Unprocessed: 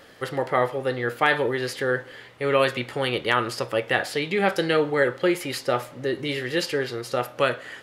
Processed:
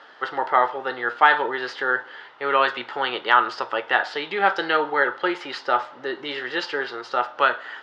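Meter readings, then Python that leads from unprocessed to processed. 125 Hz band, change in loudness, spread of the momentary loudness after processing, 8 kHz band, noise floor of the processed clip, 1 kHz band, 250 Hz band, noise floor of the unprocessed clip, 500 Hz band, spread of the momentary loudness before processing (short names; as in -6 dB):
under -15 dB, +2.0 dB, 10 LU, under -10 dB, -45 dBFS, +7.0 dB, -5.5 dB, -46 dBFS, -3.5 dB, 7 LU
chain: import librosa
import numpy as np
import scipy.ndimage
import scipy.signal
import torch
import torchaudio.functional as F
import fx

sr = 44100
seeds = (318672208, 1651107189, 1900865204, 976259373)

y = fx.cabinet(x, sr, low_hz=460.0, low_slope=12, high_hz=4600.0, hz=(520.0, 900.0, 1400.0, 2300.0, 4300.0), db=(-7, 8, 7, -7, -3))
y = F.gain(torch.from_numpy(y), 2.5).numpy()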